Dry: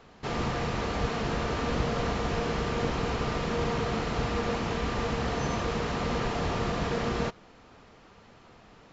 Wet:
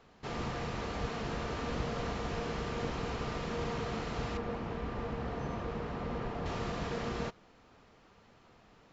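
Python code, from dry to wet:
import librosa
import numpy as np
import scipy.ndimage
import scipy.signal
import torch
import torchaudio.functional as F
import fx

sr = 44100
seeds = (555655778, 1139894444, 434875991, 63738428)

y = fx.lowpass(x, sr, hz=1400.0, slope=6, at=(4.37, 6.46))
y = y * 10.0 ** (-7.0 / 20.0)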